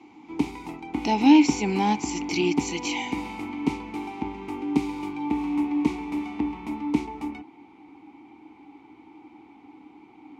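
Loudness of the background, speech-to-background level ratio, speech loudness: -30.0 LUFS, 7.0 dB, -23.0 LUFS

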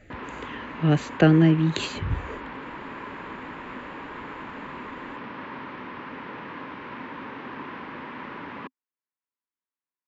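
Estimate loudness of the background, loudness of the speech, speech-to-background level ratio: -37.5 LUFS, -22.0 LUFS, 15.5 dB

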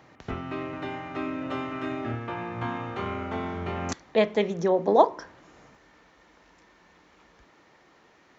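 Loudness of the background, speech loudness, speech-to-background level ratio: -33.5 LUFS, -23.5 LUFS, 10.0 dB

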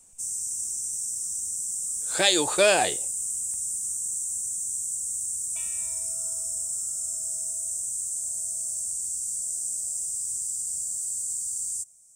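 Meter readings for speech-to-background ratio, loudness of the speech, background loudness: 5.0 dB, -22.5 LUFS, -27.5 LUFS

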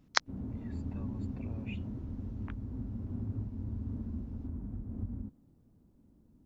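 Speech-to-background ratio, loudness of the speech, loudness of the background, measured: 2.5 dB, -38.0 LUFS, -40.5 LUFS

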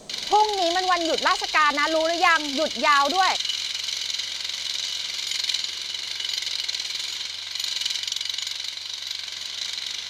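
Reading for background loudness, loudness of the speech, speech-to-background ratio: -26.5 LUFS, -21.5 LUFS, 5.0 dB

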